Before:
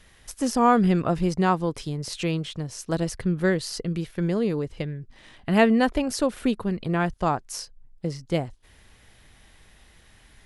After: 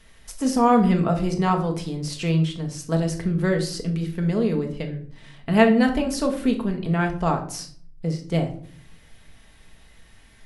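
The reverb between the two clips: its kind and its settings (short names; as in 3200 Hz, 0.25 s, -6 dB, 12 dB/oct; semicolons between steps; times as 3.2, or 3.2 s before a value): shoebox room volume 600 m³, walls furnished, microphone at 1.6 m; gain -1 dB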